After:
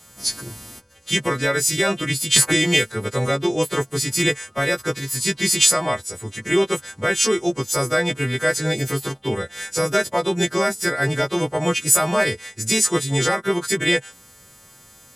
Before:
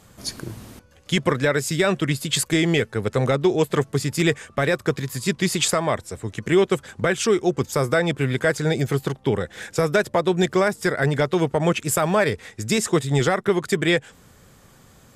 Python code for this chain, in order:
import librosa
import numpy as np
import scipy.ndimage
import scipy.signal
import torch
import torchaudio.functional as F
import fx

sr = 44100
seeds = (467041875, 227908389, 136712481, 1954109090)

y = fx.freq_snap(x, sr, grid_st=2)
y = fx.band_squash(y, sr, depth_pct=100, at=(2.36, 2.92))
y = y * librosa.db_to_amplitude(-1.0)